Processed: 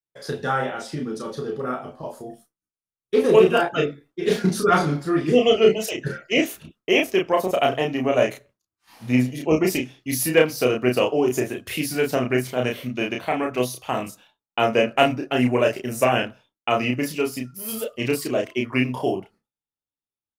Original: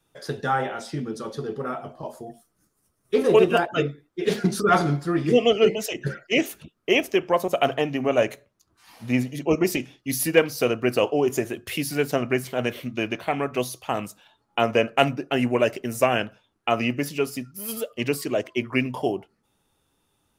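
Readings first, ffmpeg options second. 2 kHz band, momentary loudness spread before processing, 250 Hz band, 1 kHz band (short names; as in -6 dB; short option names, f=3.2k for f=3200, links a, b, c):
+1.5 dB, 12 LU, +2.0 dB, +1.5 dB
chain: -filter_complex "[0:a]asplit=2[a][b];[b]adelay=32,volume=-3dB[c];[a][c]amix=inputs=2:normalize=0,agate=range=-33dB:threshold=-46dB:ratio=3:detection=peak"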